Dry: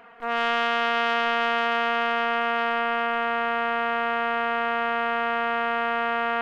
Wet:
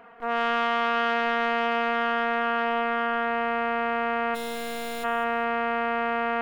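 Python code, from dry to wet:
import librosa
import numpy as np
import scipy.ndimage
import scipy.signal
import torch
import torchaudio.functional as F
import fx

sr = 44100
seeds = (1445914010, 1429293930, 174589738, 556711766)

y = fx.high_shelf(x, sr, hz=5000.0, db=5.5)
y = fx.overflow_wrap(y, sr, gain_db=22.0, at=(4.34, 5.03), fade=0.02)
y = fx.high_shelf(y, sr, hz=2100.0, db=-11.0)
y = fx.echo_feedback(y, sr, ms=202, feedback_pct=29, wet_db=-13.0)
y = y * librosa.db_to_amplitude(1.5)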